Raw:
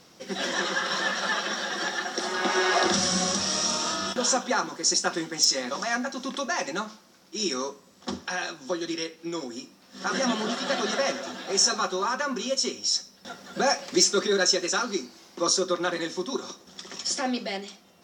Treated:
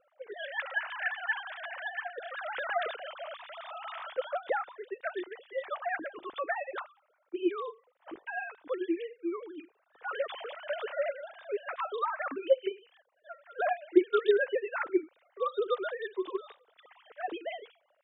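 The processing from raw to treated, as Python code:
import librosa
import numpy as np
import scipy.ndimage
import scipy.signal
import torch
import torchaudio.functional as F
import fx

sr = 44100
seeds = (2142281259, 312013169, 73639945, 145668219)

y = fx.sine_speech(x, sr)
y = fx.env_lowpass(y, sr, base_hz=1600.0, full_db=-24.0)
y = F.gain(torch.from_numpy(y), -6.5).numpy()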